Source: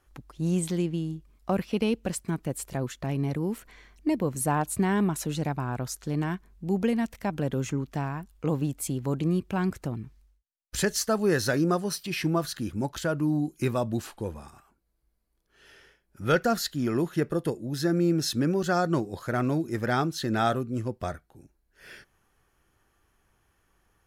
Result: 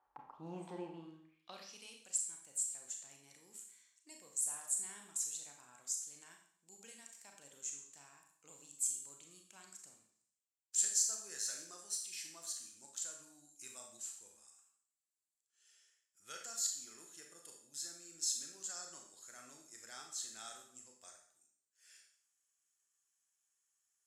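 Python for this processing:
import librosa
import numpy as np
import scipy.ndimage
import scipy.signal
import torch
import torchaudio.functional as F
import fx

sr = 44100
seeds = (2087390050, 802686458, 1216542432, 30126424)

y = fx.filter_sweep_bandpass(x, sr, from_hz=870.0, to_hz=7500.0, start_s=0.94, end_s=1.77, q=6.2)
y = fx.rev_schroeder(y, sr, rt60_s=0.6, comb_ms=28, drr_db=2.0)
y = y * 10.0 ** (4.5 / 20.0)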